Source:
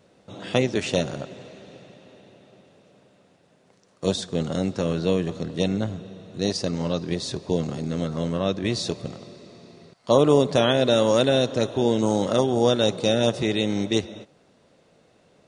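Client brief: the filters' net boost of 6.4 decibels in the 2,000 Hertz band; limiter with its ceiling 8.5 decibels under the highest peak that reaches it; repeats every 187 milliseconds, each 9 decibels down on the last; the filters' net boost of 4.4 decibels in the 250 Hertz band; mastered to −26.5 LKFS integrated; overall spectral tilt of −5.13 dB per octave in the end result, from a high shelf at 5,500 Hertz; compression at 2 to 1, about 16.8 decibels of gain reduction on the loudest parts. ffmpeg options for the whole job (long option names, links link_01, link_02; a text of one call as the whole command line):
ffmpeg -i in.wav -af "equalizer=frequency=250:width_type=o:gain=5.5,equalizer=frequency=2000:width_type=o:gain=7.5,highshelf=frequency=5500:gain=6.5,acompressor=threshold=-42dB:ratio=2,alimiter=limit=-23.5dB:level=0:latency=1,aecho=1:1:187|374|561|748:0.355|0.124|0.0435|0.0152,volume=10dB" out.wav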